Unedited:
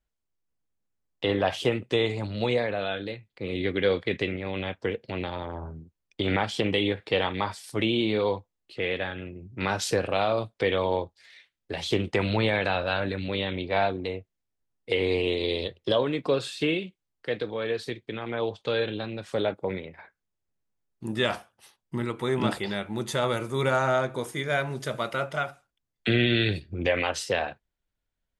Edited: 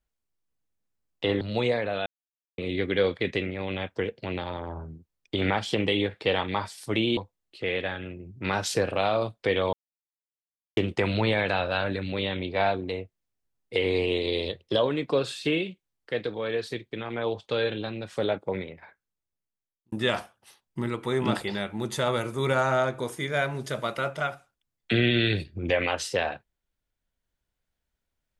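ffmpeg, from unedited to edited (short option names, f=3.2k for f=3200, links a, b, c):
-filter_complex "[0:a]asplit=8[a][b][c][d][e][f][g][h];[a]atrim=end=1.412[i];[b]atrim=start=2.268:end=2.92,asetpts=PTS-STARTPTS,afade=t=out:st=0.648:d=0.004:c=hsin[j];[c]atrim=start=2.92:end=3.44,asetpts=PTS-STARTPTS,volume=0[k];[d]atrim=start=3.44:end=8.032,asetpts=PTS-STARTPTS,afade=t=in:d=0.004:c=hsin[l];[e]atrim=start=8.328:end=10.89,asetpts=PTS-STARTPTS,afade=t=out:st=2.558:d=0.004:c=hsin[m];[f]atrim=start=10.89:end=11.93,asetpts=PTS-STARTPTS,volume=0[n];[g]atrim=start=11.93:end=21.08,asetpts=PTS-STARTPTS,afade=t=in:d=0.004:c=hsin,afade=t=out:st=7.83:d=1.32[o];[h]atrim=start=21.08,asetpts=PTS-STARTPTS,afade=t=in:d=0.004:c=hsin[p];[j][k][l]concat=n=3:v=0:a=1[q];[i][q]acrossfade=d=0.004:c1=hsin:c2=hsin[r];[m][n][o][p]concat=n=4:v=0:a=1[s];[r][s]acrossfade=d=0.004:c1=hsin:c2=hsin"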